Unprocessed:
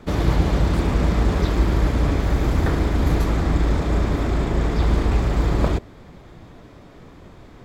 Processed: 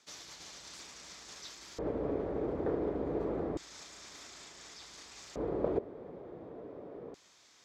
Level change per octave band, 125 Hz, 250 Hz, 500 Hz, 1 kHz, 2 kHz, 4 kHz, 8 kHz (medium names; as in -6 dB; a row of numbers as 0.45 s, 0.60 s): -27.5 dB, -16.0 dB, -9.0 dB, -17.5 dB, -21.0 dB, -13.0 dB, no reading